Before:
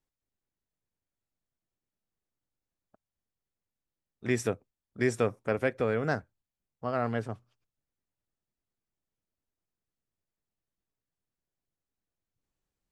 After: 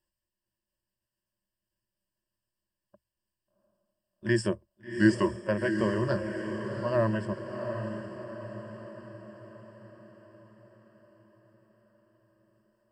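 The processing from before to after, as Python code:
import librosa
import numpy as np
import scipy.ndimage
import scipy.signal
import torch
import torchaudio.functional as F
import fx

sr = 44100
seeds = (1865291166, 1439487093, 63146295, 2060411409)

y = fx.pitch_ramps(x, sr, semitones=-3.5, every_ms=1330)
y = fx.ripple_eq(y, sr, per_octave=1.3, db=17)
y = fx.echo_diffused(y, sr, ms=733, feedback_pct=53, wet_db=-7.0)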